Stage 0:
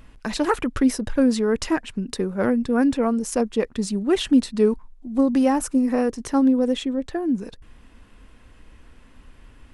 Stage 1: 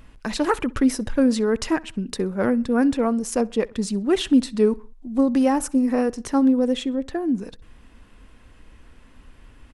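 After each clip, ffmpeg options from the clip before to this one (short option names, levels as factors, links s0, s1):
-filter_complex "[0:a]asplit=2[s0][s1];[s1]adelay=64,lowpass=f=4700:p=1,volume=0.0708,asplit=2[s2][s3];[s3]adelay=64,lowpass=f=4700:p=1,volume=0.44,asplit=2[s4][s5];[s5]adelay=64,lowpass=f=4700:p=1,volume=0.44[s6];[s0][s2][s4][s6]amix=inputs=4:normalize=0"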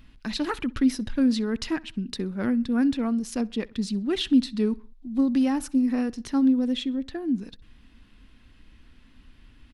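-af "equalizer=f=250:t=o:w=1:g=4,equalizer=f=500:t=o:w=1:g=-8,equalizer=f=1000:t=o:w=1:g=-4,equalizer=f=4000:t=o:w=1:g=7,equalizer=f=8000:t=o:w=1:g=-7,volume=0.596"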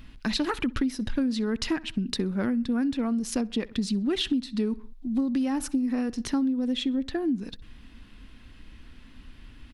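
-af "acompressor=threshold=0.0398:ratio=12,volume=1.78"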